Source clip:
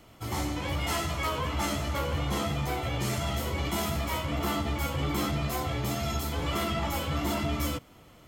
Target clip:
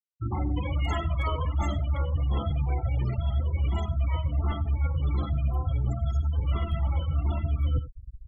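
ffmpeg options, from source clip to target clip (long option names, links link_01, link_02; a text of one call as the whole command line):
ffmpeg -i in.wav -filter_complex "[0:a]asubboost=boost=7.5:cutoff=84,afftfilt=real='re*gte(hypot(re,im),0.0501)':imag='im*gte(hypot(re,im),0.0501)':win_size=1024:overlap=0.75,acrossover=split=2600[link_01][link_02];[link_02]aeval=exprs='0.0119*(abs(mod(val(0)/0.0119+3,4)-2)-1)':channel_layout=same[link_03];[link_01][link_03]amix=inputs=2:normalize=0,lowshelf=frequency=200:gain=4.5,asplit=2[link_04][link_05];[link_05]adelay=93.29,volume=-21dB,highshelf=frequency=4000:gain=-2.1[link_06];[link_04][link_06]amix=inputs=2:normalize=0,areverse,acompressor=threshold=-30dB:ratio=8,areverse,volume=6.5dB" out.wav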